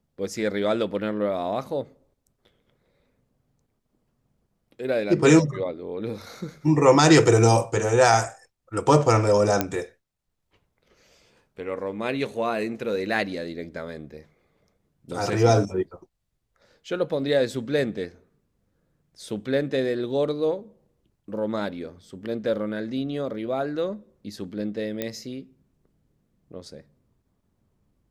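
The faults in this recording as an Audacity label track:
9.610000	9.610000	click −6 dBFS
25.020000	25.020000	click −13 dBFS

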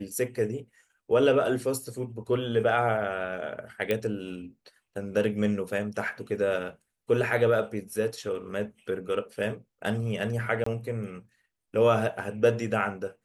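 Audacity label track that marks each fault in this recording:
3.910000	3.910000	click −14 dBFS
10.640000	10.660000	drop-out 24 ms

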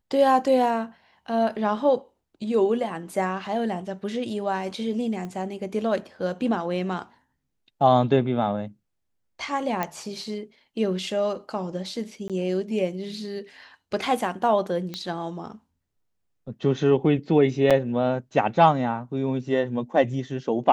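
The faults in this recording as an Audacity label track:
5.250000	5.250000	click −23 dBFS
9.830000	9.830000	click −12 dBFS
12.280000	12.300000	drop-out 17 ms
14.940000	14.940000	click −17 dBFS
17.700000	17.710000	drop-out 6.6 ms

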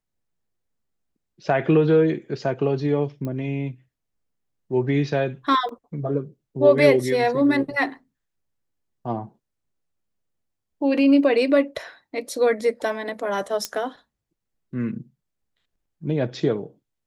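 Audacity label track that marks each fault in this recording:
3.250000	3.250000	click −19 dBFS
5.690000	5.690000	drop-out 2.3 ms
13.650000	13.650000	click −10 dBFS

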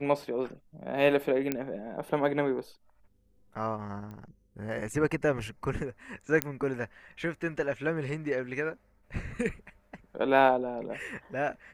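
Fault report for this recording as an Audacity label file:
1.520000	1.520000	click −14 dBFS
4.110000	4.110000	click −32 dBFS
6.420000	6.420000	click −9 dBFS

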